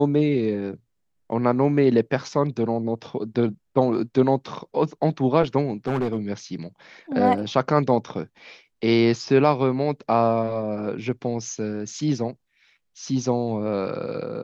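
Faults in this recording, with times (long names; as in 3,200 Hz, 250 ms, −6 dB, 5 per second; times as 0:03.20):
0:05.87–0:06.18: clipping −19 dBFS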